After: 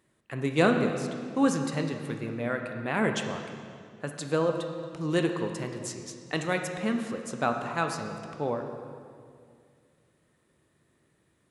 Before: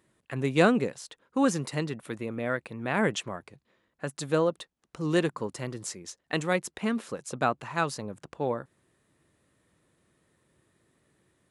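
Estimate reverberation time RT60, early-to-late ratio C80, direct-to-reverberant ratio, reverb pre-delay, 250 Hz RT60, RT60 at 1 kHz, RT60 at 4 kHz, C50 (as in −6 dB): 2.2 s, 6.5 dB, 4.0 dB, 9 ms, 2.6 s, 2.0 s, 1.8 s, 5.5 dB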